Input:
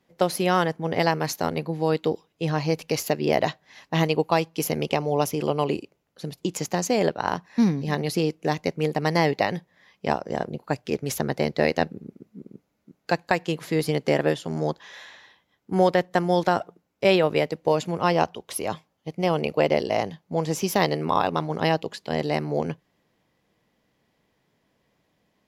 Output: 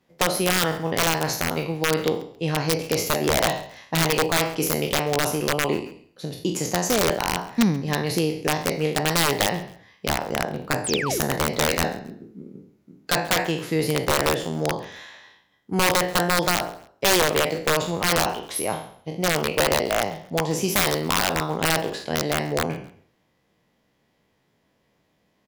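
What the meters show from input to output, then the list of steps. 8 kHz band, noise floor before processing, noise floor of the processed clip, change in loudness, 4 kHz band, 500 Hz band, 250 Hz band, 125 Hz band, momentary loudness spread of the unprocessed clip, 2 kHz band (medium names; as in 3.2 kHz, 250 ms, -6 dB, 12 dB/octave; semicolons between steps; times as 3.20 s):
+10.0 dB, -72 dBFS, -68 dBFS, +2.0 dB, +8.0 dB, -1.0 dB, 0.0 dB, 0.0 dB, 9 LU, +5.5 dB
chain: spectral sustain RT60 0.53 s; integer overflow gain 11.5 dB; painted sound fall, 10.84–11.20 s, 290–11000 Hz -28 dBFS; on a send: frequency-shifting echo 135 ms, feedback 34%, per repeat -33 Hz, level -22.5 dB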